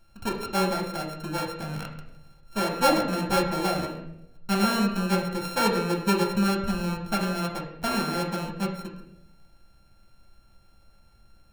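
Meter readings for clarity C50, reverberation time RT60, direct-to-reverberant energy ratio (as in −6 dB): 5.5 dB, 0.80 s, 0.0 dB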